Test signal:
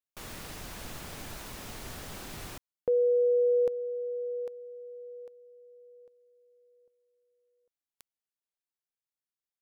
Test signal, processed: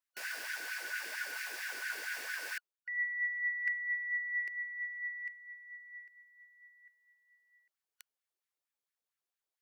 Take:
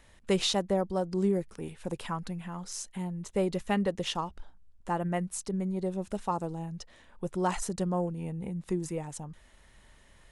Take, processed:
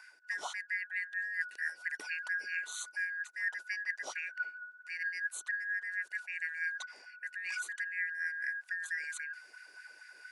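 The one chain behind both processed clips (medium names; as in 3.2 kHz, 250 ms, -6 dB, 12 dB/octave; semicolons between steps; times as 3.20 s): four frequency bands reordered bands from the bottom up 3142; reverse; compression 12:1, threshold -38 dBFS; reverse; LFO high-pass sine 4.4 Hz 350–1800 Hz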